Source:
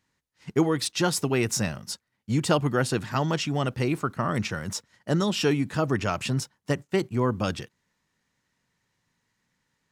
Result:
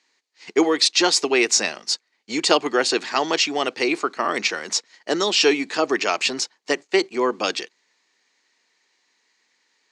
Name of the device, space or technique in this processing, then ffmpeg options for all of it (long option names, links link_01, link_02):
phone speaker on a table: -af "highpass=frequency=350:width=0.5412,highpass=frequency=350:width=1.3066,equalizer=frequency=560:width_type=q:width=4:gain=-6,equalizer=frequency=970:width_type=q:width=4:gain=-3,equalizer=frequency=1400:width_type=q:width=4:gain=-5,equalizer=frequency=2300:width_type=q:width=4:gain=4,equalizer=frequency=4400:width_type=q:width=4:gain=7,equalizer=frequency=6700:width_type=q:width=4:gain=3,lowpass=frequency=7400:width=0.5412,lowpass=frequency=7400:width=1.3066,volume=9dB"